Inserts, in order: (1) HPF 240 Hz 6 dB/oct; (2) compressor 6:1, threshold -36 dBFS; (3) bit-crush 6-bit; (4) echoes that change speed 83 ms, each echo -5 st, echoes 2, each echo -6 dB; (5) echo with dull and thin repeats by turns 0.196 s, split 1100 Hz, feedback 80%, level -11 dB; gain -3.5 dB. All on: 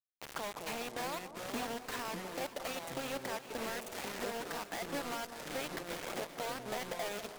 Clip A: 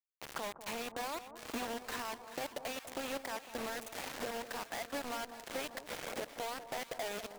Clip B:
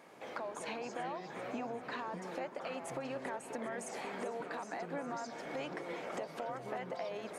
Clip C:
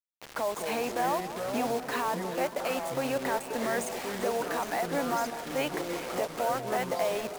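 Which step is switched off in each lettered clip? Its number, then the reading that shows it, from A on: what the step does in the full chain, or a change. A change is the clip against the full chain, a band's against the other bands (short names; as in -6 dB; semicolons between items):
4, loudness change -1.0 LU; 3, distortion -2 dB; 2, mean gain reduction 8.0 dB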